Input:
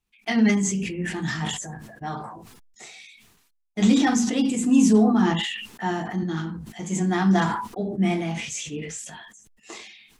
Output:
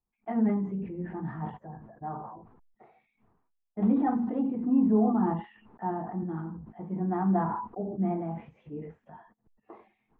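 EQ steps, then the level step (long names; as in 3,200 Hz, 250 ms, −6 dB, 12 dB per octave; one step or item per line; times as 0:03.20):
transistor ladder low-pass 1,200 Hz, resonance 30%
0.0 dB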